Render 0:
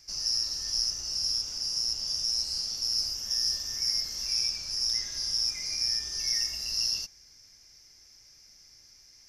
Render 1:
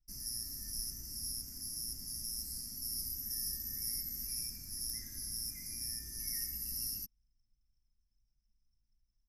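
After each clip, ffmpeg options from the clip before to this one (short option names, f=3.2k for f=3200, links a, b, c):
-af "anlmdn=0.0631,firequalizer=gain_entry='entry(160,0);entry(230,5);entry(480,-18);entry(1200,-20);entry(1900,-10);entry(3000,-28);entry(12000,15)':delay=0.05:min_phase=1"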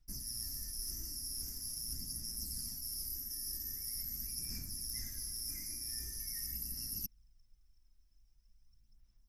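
-af "areverse,acompressor=threshold=-47dB:ratio=6,areverse,aphaser=in_gain=1:out_gain=1:delay=3.2:decay=0.42:speed=0.44:type=sinusoidal,volume=7dB"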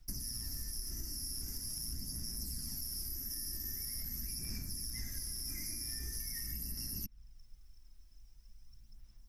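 -filter_complex "[0:a]acrossover=split=230|3400[a][b][c];[c]alimiter=level_in=14dB:limit=-24dB:level=0:latency=1:release=379,volume=-14dB[d];[a][b][d]amix=inputs=3:normalize=0,acompressor=threshold=-47dB:ratio=6,volume=10dB"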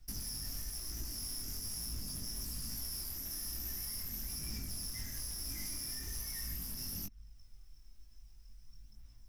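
-filter_complex "[0:a]asplit=2[a][b];[b]aeval=exprs='(mod(75*val(0)+1,2)-1)/75':c=same,volume=-10dB[c];[a][c]amix=inputs=2:normalize=0,flanger=delay=18:depth=6.4:speed=1.1,volume=2.5dB"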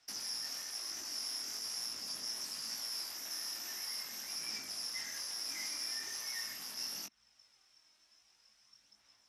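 -af "highpass=640,lowpass=6.2k,volume=7.5dB"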